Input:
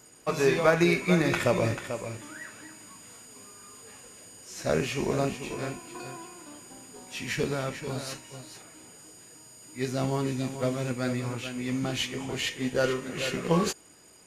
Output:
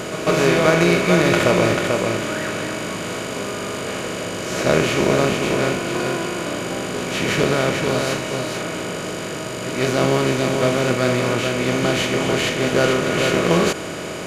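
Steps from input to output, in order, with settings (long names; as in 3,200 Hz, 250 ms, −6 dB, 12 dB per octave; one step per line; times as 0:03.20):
compressor on every frequency bin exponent 0.4
echo ahead of the sound 146 ms −12 dB
level +2.5 dB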